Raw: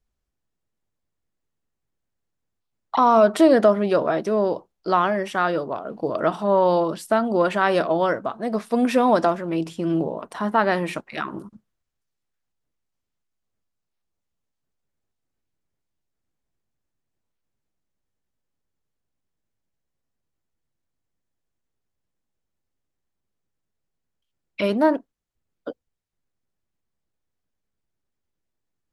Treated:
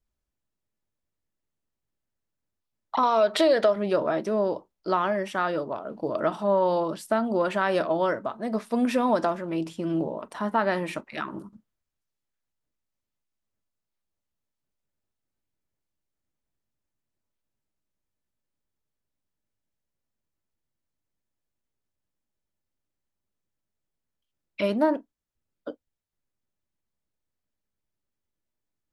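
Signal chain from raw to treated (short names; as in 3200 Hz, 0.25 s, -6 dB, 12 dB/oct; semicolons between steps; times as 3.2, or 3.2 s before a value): 3.03–3.76 graphic EQ 125/250/500/2000/4000 Hz +6/-9/+7/+6/+12 dB; compressor 6:1, threshold -14 dBFS, peak gain reduction 7.5 dB; on a send: reverb, pre-delay 3 ms, DRR 13 dB; on the sum: gain -4 dB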